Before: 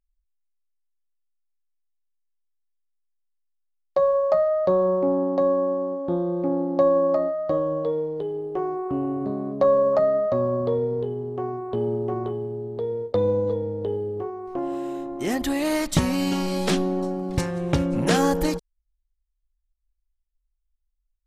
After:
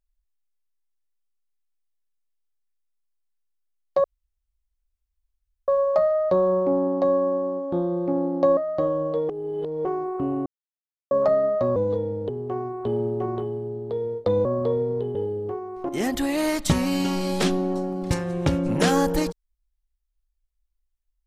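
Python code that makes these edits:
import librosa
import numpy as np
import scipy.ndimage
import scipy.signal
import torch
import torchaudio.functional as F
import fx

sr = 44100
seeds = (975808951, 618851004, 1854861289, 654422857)

y = fx.edit(x, sr, fx.insert_room_tone(at_s=4.04, length_s=1.64),
    fx.cut(start_s=6.93, length_s=0.35),
    fx.reverse_span(start_s=8.0, length_s=0.56),
    fx.silence(start_s=9.17, length_s=0.65),
    fx.swap(start_s=10.47, length_s=0.7, other_s=13.33, other_length_s=0.53),
    fx.cut(start_s=14.6, length_s=0.56), tone=tone)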